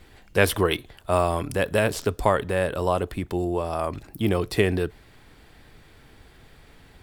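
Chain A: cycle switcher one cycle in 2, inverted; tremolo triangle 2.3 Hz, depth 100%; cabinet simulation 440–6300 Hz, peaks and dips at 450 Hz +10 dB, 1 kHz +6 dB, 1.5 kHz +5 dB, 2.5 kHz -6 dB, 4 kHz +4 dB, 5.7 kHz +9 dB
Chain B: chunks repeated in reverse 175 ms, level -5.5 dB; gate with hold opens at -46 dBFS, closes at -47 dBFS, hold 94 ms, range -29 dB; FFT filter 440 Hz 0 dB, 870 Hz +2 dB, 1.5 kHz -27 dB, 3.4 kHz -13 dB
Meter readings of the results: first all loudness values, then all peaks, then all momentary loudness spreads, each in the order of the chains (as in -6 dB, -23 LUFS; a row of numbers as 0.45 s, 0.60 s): -28.0 LUFS, -24.5 LUFS; -2.0 dBFS, -5.5 dBFS; 16 LU, 6 LU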